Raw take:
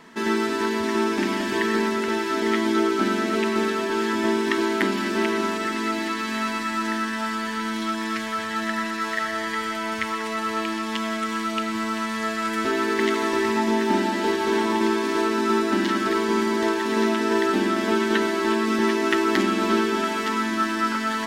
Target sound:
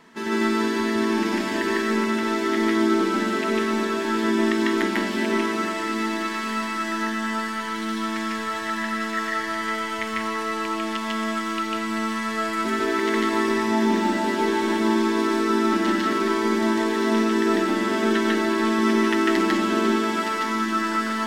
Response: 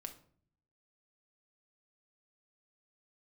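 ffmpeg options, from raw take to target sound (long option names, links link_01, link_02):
-filter_complex "[0:a]asplit=2[link_01][link_02];[1:a]atrim=start_sample=2205,asetrate=61740,aresample=44100,adelay=148[link_03];[link_02][link_03]afir=irnorm=-1:irlink=0,volume=8.5dB[link_04];[link_01][link_04]amix=inputs=2:normalize=0,volume=-4dB"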